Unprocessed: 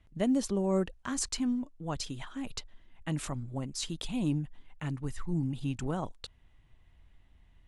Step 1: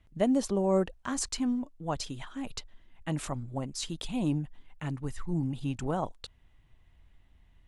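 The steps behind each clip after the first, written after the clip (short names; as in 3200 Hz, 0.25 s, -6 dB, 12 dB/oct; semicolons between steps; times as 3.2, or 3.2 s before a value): dynamic EQ 710 Hz, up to +6 dB, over -45 dBFS, Q 0.92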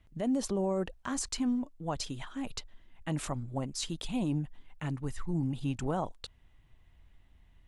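limiter -23.5 dBFS, peak gain reduction 9 dB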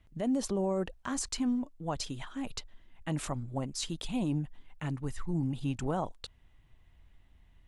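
nothing audible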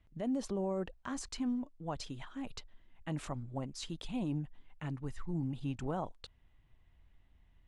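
high shelf 7500 Hz -11.5 dB; gain -4.5 dB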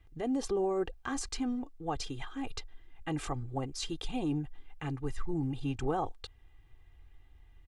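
comb 2.5 ms, depth 69%; gain +4 dB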